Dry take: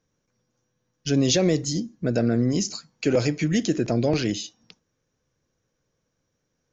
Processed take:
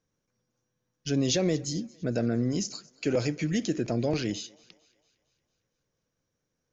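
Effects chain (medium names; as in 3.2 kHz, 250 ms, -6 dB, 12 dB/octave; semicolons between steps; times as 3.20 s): thinning echo 228 ms, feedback 55%, high-pass 400 Hz, level -24 dB; trim -5.5 dB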